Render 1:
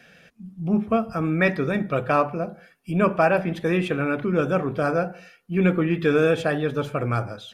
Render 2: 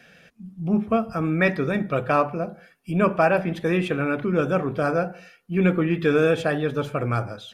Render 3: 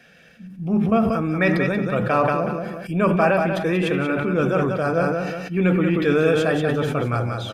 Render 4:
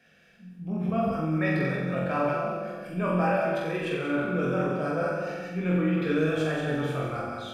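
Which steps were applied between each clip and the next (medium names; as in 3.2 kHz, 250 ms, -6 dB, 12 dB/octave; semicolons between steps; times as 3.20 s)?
no audible change
on a send: feedback delay 185 ms, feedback 20%, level -6 dB; on the sum: decay stretcher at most 30 dB/s
chorus 0.78 Hz, delay 19 ms, depth 3.6 ms; on a send: flutter echo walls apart 7.7 m, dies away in 0.9 s; on the sum: trim -7.5 dB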